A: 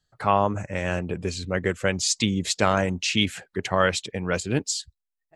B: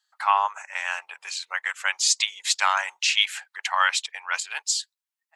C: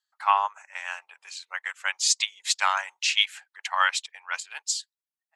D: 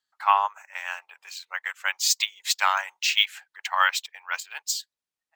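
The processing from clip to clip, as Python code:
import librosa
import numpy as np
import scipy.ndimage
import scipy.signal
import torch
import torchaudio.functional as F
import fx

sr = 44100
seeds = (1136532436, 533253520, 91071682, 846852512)

y1 = scipy.signal.sosfilt(scipy.signal.ellip(4, 1.0, 70, 870.0, 'highpass', fs=sr, output='sos'), x)
y1 = y1 * librosa.db_to_amplitude(4.0)
y2 = fx.upward_expand(y1, sr, threshold_db=-36.0, expansion=1.5)
y3 = np.interp(np.arange(len(y2)), np.arange(len(y2))[::2], y2[::2])
y3 = y3 * librosa.db_to_amplitude(1.5)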